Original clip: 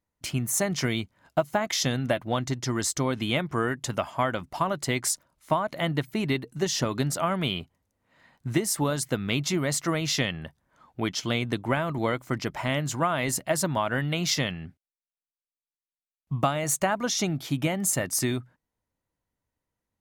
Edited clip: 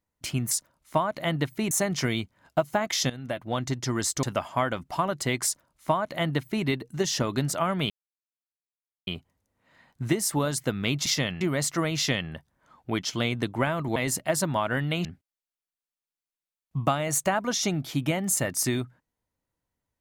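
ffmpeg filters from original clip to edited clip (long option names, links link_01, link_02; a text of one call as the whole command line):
ffmpeg -i in.wav -filter_complex "[0:a]asplit=10[link_01][link_02][link_03][link_04][link_05][link_06][link_07][link_08][link_09][link_10];[link_01]atrim=end=0.512[link_11];[link_02]atrim=start=5.068:end=6.272[link_12];[link_03]atrim=start=0.508:end=1.9,asetpts=PTS-STARTPTS,afade=type=out:start_time=1.388:duration=0.004:curve=hsin:silence=0.177828[link_13];[link_04]atrim=start=1.9:end=3.032,asetpts=PTS-STARTPTS,afade=type=in:duration=0.58:silence=0.177828[link_14];[link_05]atrim=start=3.848:end=7.52,asetpts=PTS-STARTPTS,afade=type=out:start_time=3.668:duration=0.004:curve=hsin,apad=pad_dur=1.17[link_15];[link_06]atrim=start=7.52:end=9.512,asetpts=PTS-STARTPTS,afade=type=in:duration=0.004:curve=hsin[link_16];[link_07]atrim=start=14.258:end=14.612[link_17];[link_08]atrim=start=9.508:end=12.062[link_18];[link_09]atrim=start=13.168:end=14.262[link_19];[link_10]atrim=start=14.608[link_20];[link_11][link_12]acrossfade=duration=0.004:curve1=hsin:curve2=hsin[link_21];[link_13][link_14]concat=n=2:v=0:a=1[link_22];[link_21][link_22]acrossfade=duration=0.004:curve1=hsin:curve2=hsin[link_23];[link_15][link_16]concat=n=2:v=0:a=1[link_24];[link_23][link_24]acrossfade=duration=0.004:curve1=hsin:curve2=hsin[link_25];[link_25][link_17]acrossfade=duration=0.004:curve1=hsin:curve2=hsin[link_26];[link_26][link_18]acrossfade=duration=0.004:curve1=hsin:curve2=hsin[link_27];[link_27][link_19]acrossfade=duration=0.004:curve1=hsin:curve2=hsin[link_28];[link_28][link_20]acrossfade=duration=0.004:curve1=hsin:curve2=hsin" out.wav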